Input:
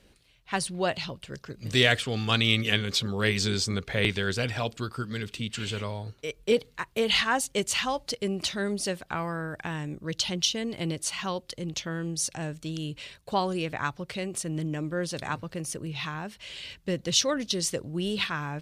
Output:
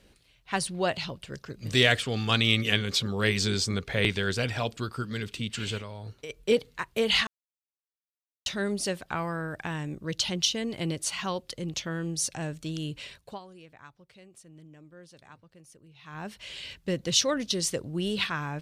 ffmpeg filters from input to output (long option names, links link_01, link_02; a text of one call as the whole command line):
ffmpeg -i in.wav -filter_complex "[0:a]asplit=3[link_01][link_02][link_03];[link_01]afade=type=out:start_time=5.77:duration=0.02[link_04];[link_02]acompressor=threshold=-35dB:ratio=6:attack=3.2:release=140:knee=1:detection=peak,afade=type=in:start_time=5.77:duration=0.02,afade=type=out:start_time=6.29:duration=0.02[link_05];[link_03]afade=type=in:start_time=6.29:duration=0.02[link_06];[link_04][link_05][link_06]amix=inputs=3:normalize=0,asplit=5[link_07][link_08][link_09][link_10][link_11];[link_07]atrim=end=7.27,asetpts=PTS-STARTPTS,afade=type=out:start_time=7.266:duration=0.004:curve=hsin[link_12];[link_08]atrim=start=7.27:end=8.46,asetpts=PTS-STARTPTS,volume=0[link_13];[link_09]atrim=start=8.46:end=13.39,asetpts=PTS-STARTPTS,afade=type=in:duration=0.004:curve=hsin,afade=type=out:start_time=4.7:duration=0.23:silence=0.1[link_14];[link_10]atrim=start=13.39:end=16.04,asetpts=PTS-STARTPTS,volume=-20dB[link_15];[link_11]atrim=start=16.04,asetpts=PTS-STARTPTS,afade=type=in:duration=0.23:silence=0.1[link_16];[link_12][link_13][link_14][link_15][link_16]concat=n=5:v=0:a=1" out.wav